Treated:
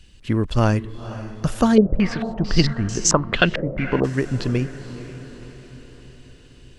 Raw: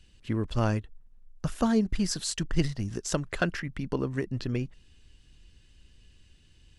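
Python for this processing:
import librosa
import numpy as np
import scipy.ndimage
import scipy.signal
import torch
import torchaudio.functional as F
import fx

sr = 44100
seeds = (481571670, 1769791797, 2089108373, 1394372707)

y = fx.echo_diffused(x, sr, ms=497, feedback_pct=54, wet_db=-13.5)
y = fx.filter_held_lowpass(y, sr, hz=4.5, low_hz=530.0, high_hz=6500.0, at=(1.75, 4.03), fade=0.02)
y = y * librosa.db_to_amplitude(8.5)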